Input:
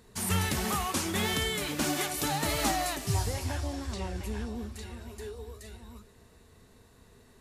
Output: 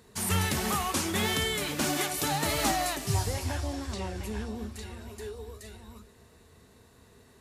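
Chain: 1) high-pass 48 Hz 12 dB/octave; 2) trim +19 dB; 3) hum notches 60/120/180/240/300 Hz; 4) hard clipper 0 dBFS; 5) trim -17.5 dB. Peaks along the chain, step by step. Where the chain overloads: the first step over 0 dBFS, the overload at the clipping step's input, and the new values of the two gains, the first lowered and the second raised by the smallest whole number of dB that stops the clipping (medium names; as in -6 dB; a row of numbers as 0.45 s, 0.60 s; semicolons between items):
-15.0 dBFS, +4.0 dBFS, +4.0 dBFS, 0.0 dBFS, -17.5 dBFS; step 2, 4.0 dB; step 2 +15 dB, step 5 -13.5 dB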